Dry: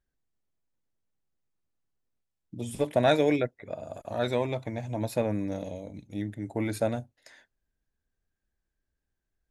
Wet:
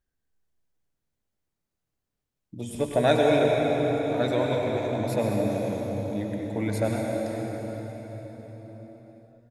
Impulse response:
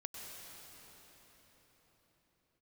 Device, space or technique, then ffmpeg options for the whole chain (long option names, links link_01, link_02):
cave: -filter_complex "[0:a]aecho=1:1:220:0.224[link_01];[1:a]atrim=start_sample=2205[link_02];[link_01][link_02]afir=irnorm=-1:irlink=0,volume=5.5dB"